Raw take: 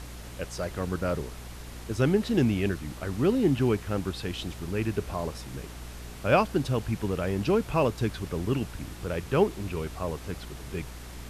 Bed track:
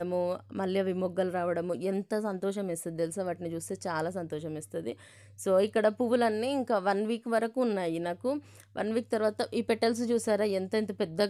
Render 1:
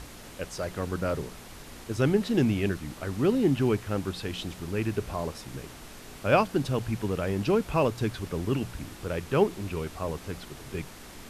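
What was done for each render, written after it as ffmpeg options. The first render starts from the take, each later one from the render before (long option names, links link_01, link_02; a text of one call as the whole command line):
ffmpeg -i in.wav -af "bandreject=frequency=60:width_type=h:width=4,bandreject=frequency=120:width_type=h:width=4,bandreject=frequency=180:width_type=h:width=4" out.wav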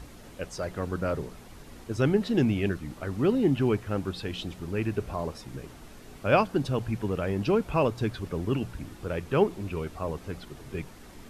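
ffmpeg -i in.wav -af "afftdn=noise_reduction=7:noise_floor=-46" out.wav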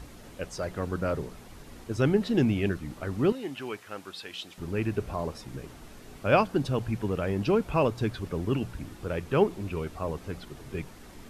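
ffmpeg -i in.wav -filter_complex "[0:a]asettb=1/sr,asplit=3[link_01][link_02][link_03];[link_01]atrim=end=3.324[link_04];[link_02]atrim=start=3.32:end=4.58,asetpts=PTS-STARTPTS,afade=type=in:duration=0.004:curve=qsin,afade=type=out:start_time=1.256:duration=0.004:curve=qsin,highpass=frequency=1300:poles=1[link_05];[link_03]atrim=start=4.576[link_06];[link_04][link_05]acrossfade=duration=0.004:curve1=hsin:curve2=qsin[link_07];[link_07][link_06]acrossfade=duration=0.004:curve1=qsin:curve2=hsin" out.wav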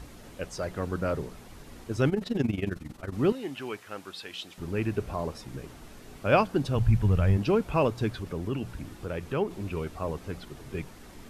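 ffmpeg -i in.wav -filter_complex "[0:a]asettb=1/sr,asplit=3[link_01][link_02][link_03];[link_01]atrim=end=2.094[link_04];[link_02]atrim=start=2.09:end=3.13,asetpts=PTS-STARTPTS,afade=type=in:duration=0.004:curve=qsin,afade=type=out:start_time=1.036:duration=0.004:curve=qsin,tremolo=f=22:d=0.824[link_05];[link_03]atrim=start=3.126[link_06];[link_04][link_05]acrossfade=duration=0.004:curve1=hsin:curve2=qsin[link_07];[link_07][link_06]acrossfade=duration=0.004:curve1=qsin:curve2=hsin,asplit=3[link_08][link_09][link_10];[link_08]afade=type=out:start_time=6.75:duration=0.02[link_11];[link_09]asubboost=boost=8:cutoff=110,afade=type=in:start_time=6.75:duration=0.02,afade=type=out:start_time=7.36:duration=0.02[link_12];[link_10]afade=type=in:start_time=7.36:duration=0.02[link_13];[link_11][link_12][link_13]amix=inputs=3:normalize=0,asettb=1/sr,asplit=3[link_14][link_15][link_16];[link_14]atrim=end=8.184[link_17];[link_15]atrim=start=8.18:end=9.51,asetpts=PTS-STARTPTS,afade=type=in:duration=0.004:curve=qsin,afade=type=out:start_time=1.326:duration=0.004:curve=qsin,acompressor=threshold=-32dB:ratio=1.5:attack=3.2:release=140:knee=1:detection=peak[link_18];[link_16]atrim=start=9.506[link_19];[link_17][link_18]acrossfade=duration=0.004:curve1=hsin:curve2=qsin[link_20];[link_20][link_19]acrossfade=duration=0.004:curve1=qsin:curve2=hsin" out.wav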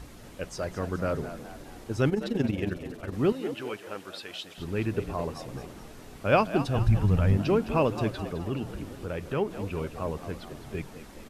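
ffmpeg -i in.wav -filter_complex "[0:a]asplit=6[link_01][link_02][link_03][link_04][link_05][link_06];[link_02]adelay=211,afreqshift=67,volume=-12dB[link_07];[link_03]adelay=422,afreqshift=134,volume=-18dB[link_08];[link_04]adelay=633,afreqshift=201,volume=-24dB[link_09];[link_05]adelay=844,afreqshift=268,volume=-30.1dB[link_10];[link_06]adelay=1055,afreqshift=335,volume=-36.1dB[link_11];[link_01][link_07][link_08][link_09][link_10][link_11]amix=inputs=6:normalize=0" out.wav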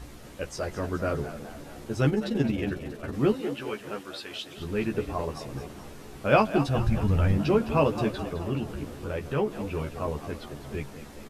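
ffmpeg -i in.wav -filter_complex "[0:a]asplit=2[link_01][link_02];[link_02]adelay=14,volume=-4dB[link_03];[link_01][link_03]amix=inputs=2:normalize=0,asplit=2[link_04][link_05];[link_05]adelay=638,lowpass=frequency=2000:poles=1,volume=-21.5dB,asplit=2[link_06][link_07];[link_07]adelay=638,lowpass=frequency=2000:poles=1,volume=0.51,asplit=2[link_08][link_09];[link_09]adelay=638,lowpass=frequency=2000:poles=1,volume=0.51,asplit=2[link_10][link_11];[link_11]adelay=638,lowpass=frequency=2000:poles=1,volume=0.51[link_12];[link_04][link_06][link_08][link_10][link_12]amix=inputs=5:normalize=0" out.wav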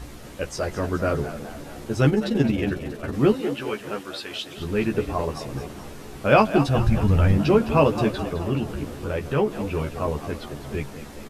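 ffmpeg -i in.wav -af "volume=5dB,alimiter=limit=-3dB:level=0:latency=1" out.wav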